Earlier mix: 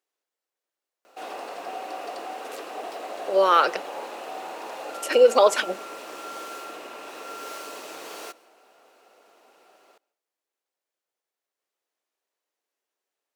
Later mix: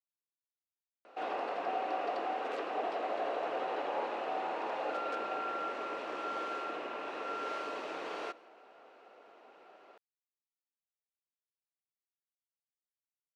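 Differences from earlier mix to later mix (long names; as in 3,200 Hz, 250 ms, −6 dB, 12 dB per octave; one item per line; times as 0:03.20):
speech: muted
master: add low-pass filter 2,700 Hz 12 dB per octave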